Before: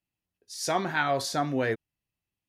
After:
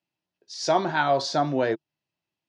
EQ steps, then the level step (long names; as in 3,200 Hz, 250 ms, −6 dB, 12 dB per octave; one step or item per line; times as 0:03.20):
dynamic equaliser 2,000 Hz, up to −6 dB, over −43 dBFS, Q 1.5
loudspeaker in its box 140–5,300 Hz, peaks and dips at 150 Hz +6 dB, 340 Hz +7 dB, 620 Hz +8 dB, 920 Hz +7 dB, 1,500 Hz +3 dB
high-shelf EQ 3,700 Hz +9 dB
0.0 dB